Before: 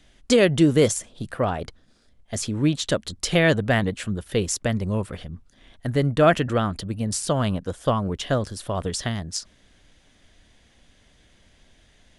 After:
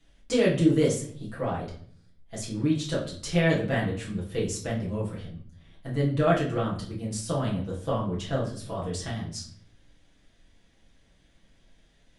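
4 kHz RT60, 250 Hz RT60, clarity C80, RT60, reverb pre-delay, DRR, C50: 0.40 s, 0.85 s, 11.5 dB, 0.55 s, 6 ms, -7.0 dB, 7.5 dB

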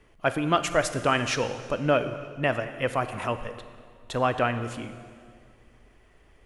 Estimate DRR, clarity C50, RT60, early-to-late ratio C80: 10.0 dB, 11.0 dB, 2.1 s, 12.0 dB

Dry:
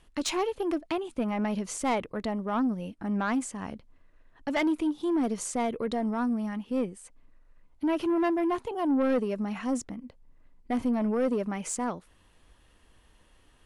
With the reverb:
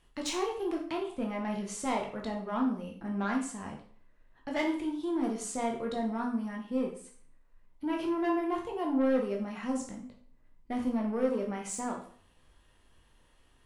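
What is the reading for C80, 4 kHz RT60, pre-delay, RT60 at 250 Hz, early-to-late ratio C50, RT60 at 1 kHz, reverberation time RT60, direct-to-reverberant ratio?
10.5 dB, 0.45 s, 6 ms, 0.50 s, 6.5 dB, 0.50 s, 0.50 s, -0.5 dB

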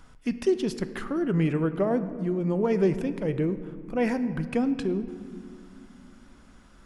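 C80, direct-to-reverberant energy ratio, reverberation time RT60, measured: 13.5 dB, 10.5 dB, 2.3 s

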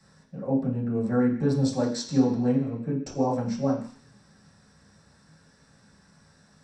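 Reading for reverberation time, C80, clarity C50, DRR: 0.50 s, 10.0 dB, 7.0 dB, -7.0 dB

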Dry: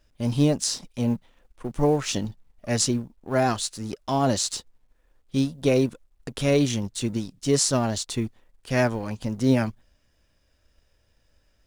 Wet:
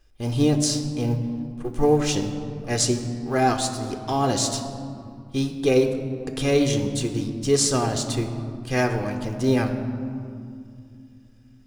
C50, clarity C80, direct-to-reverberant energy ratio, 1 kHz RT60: 8.0 dB, 9.5 dB, 6.5 dB, 2.3 s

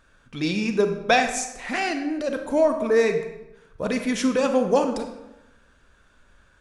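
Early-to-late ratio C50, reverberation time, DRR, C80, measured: 7.5 dB, 0.95 s, 6.0 dB, 10.0 dB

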